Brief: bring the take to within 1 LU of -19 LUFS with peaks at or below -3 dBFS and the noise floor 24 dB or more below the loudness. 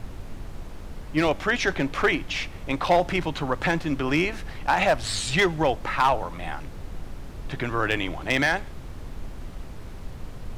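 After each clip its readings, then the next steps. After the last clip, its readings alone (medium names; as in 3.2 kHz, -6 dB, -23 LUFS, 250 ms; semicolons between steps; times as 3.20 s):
clipped samples 0.5%; clipping level -13.0 dBFS; noise floor -39 dBFS; noise floor target -49 dBFS; loudness -24.5 LUFS; peak level -13.0 dBFS; loudness target -19.0 LUFS
-> clip repair -13 dBFS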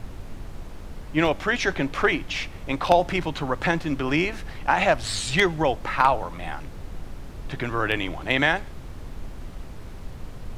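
clipped samples 0.0%; noise floor -39 dBFS; noise floor target -48 dBFS
-> noise print and reduce 9 dB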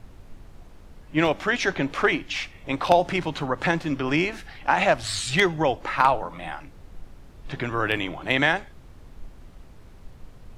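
noise floor -47 dBFS; noise floor target -48 dBFS
-> noise print and reduce 6 dB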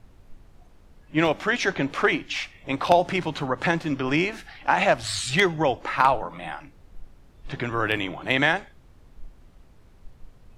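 noise floor -53 dBFS; loudness -24.0 LUFS; peak level -4.5 dBFS; loudness target -19.0 LUFS
-> trim +5 dB; peak limiter -3 dBFS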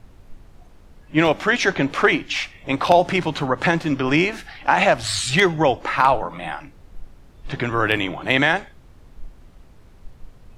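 loudness -19.5 LUFS; peak level -3.0 dBFS; noise floor -48 dBFS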